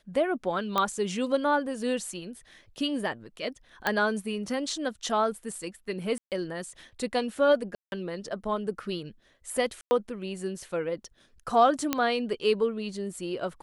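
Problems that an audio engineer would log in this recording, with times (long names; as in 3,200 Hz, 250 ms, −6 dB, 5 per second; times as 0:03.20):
0:00.78: click −12 dBFS
0:03.87: click −11 dBFS
0:06.18–0:06.32: drop-out 138 ms
0:07.75–0:07.92: drop-out 171 ms
0:09.81–0:09.91: drop-out 100 ms
0:11.93: click −9 dBFS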